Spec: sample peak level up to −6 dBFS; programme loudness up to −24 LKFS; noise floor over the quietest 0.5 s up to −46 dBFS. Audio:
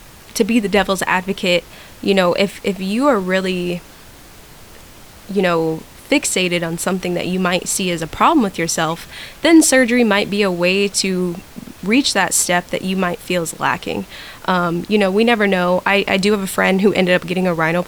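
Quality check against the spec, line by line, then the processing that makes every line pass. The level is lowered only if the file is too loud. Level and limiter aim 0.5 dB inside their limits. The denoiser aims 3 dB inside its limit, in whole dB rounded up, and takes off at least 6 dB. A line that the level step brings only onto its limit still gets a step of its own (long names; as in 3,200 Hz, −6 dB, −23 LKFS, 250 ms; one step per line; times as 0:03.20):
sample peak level −2.0 dBFS: out of spec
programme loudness −16.5 LKFS: out of spec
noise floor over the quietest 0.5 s −41 dBFS: out of spec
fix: level −8 dB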